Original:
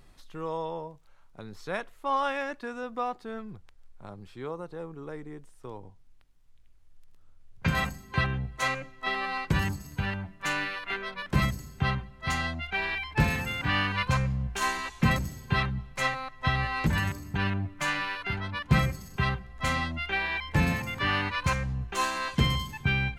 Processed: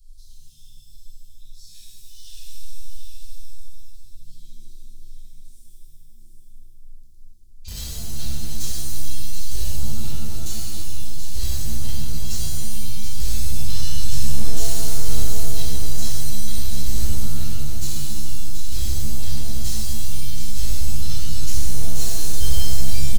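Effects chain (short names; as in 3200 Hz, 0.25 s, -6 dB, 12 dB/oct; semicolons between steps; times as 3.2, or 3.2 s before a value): tracing distortion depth 0.035 ms; inverse Chebyshev band-stop 210–1100 Hz, stop band 70 dB; bell 1900 Hz -12 dB 1.6 oct; in parallel at -7 dB: bit-crush 6-bit; on the sum: flange 0.24 Hz, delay 1.2 ms, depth 2.6 ms, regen +74%; on a send: echo 0.732 s -7 dB; on the sum: shimmer reverb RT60 2 s, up +7 st, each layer -2 dB, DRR -7.5 dB; gain +6 dB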